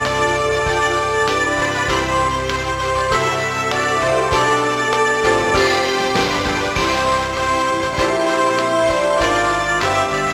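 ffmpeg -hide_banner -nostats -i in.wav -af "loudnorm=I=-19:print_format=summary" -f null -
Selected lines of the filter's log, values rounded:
Input Integrated:    -16.7 LUFS
Input True Peak:      -1.7 dBTP
Input LRA:             1.3 LU
Input Threshold:     -26.7 LUFS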